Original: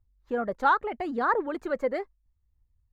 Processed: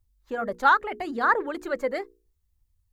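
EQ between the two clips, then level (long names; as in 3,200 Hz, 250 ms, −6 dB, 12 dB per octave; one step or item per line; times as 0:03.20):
high-shelf EQ 3,300 Hz +11 dB
mains-hum notches 60/120/180/240/300/360/420/480 Hz
dynamic equaliser 1,700 Hz, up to +5 dB, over −35 dBFS, Q 1.6
0.0 dB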